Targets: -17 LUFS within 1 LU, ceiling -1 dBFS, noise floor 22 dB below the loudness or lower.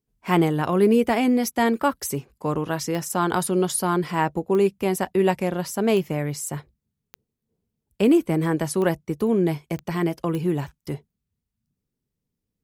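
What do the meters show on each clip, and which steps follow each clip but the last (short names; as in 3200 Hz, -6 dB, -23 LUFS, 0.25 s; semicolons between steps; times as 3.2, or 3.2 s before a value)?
clicks 7; loudness -23.0 LUFS; peak -6.0 dBFS; loudness target -17.0 LUFS
-> de-click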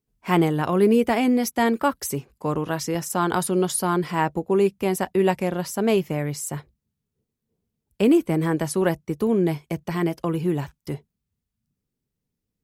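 clicks 0; loudness -23.0 LUFS; peak -6.0 dBFS; loudness target -17.0 LUFS
-> gain +6 dB; limiter -1 dBFS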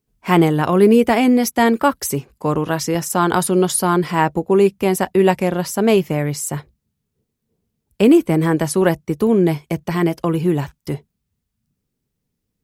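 loudness -17.0 LUFS; peak -1.0 dBFS; noise floor -77 dBFS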